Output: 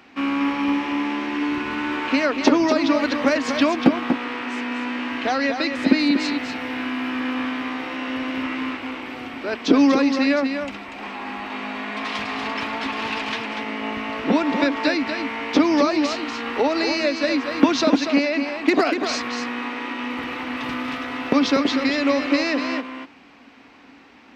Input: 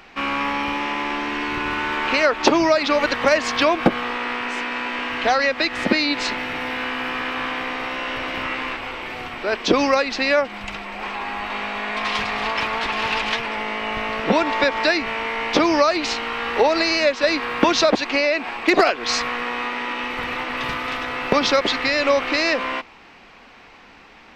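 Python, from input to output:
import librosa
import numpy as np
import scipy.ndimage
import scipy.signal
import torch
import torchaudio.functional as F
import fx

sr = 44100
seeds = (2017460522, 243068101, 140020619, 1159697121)

p1 = scipy.signal.sosfilt(scipy.signal.butter(2, 67.0, 'highpass', fs=sr, output='sos'), x)
p2 = fx.peak_eq(p1, sr, hz=270.0, db=15.0, octaves=0.4)
p3 = p2 + fx.echo_single(p2, sr, ms=240, db=-7.0, dry=0)
y = p3 * librosa.db_to_amplitude(-5.0)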